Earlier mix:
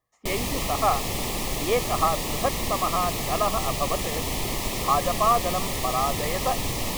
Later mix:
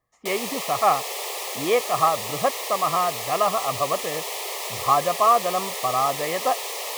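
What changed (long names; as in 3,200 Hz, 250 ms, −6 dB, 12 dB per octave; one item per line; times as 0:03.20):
speech +3.5 dB
background: add Butterworth high-pass 400 Hz 72 dB per octave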